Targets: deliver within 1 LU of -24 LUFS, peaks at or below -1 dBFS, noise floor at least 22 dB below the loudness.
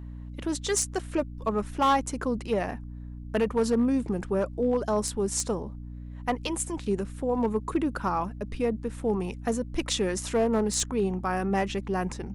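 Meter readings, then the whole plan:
clipped samples 0.5%; clipping level -17.5 dBFS; hum 60 Hz; highest harmonic 300 Hz; hum level -37 dBFS; loudness -28.5 LUFS; peak level -17.5 dBFS; loudness target -24.0 LUFS
-> clip repair -17.5 dBFS; de-hum 60 Hz, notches 5; trim +4.5 dB

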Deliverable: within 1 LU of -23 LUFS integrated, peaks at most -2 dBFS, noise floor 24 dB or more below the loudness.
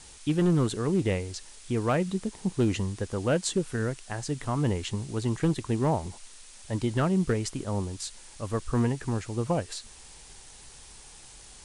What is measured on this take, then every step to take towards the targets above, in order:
clipped samples 0.5%; clipping level -17.5 dBFS; noise floor -50 dBFS; noise floor target -53 dBFS; loudness -29.0 LUFS; peak level -17.5 dBFS; loudness target -23.0 LUFS
-> clip repair -17.5 dBFS; noise print and reduce 6 dB; trim +6 dB

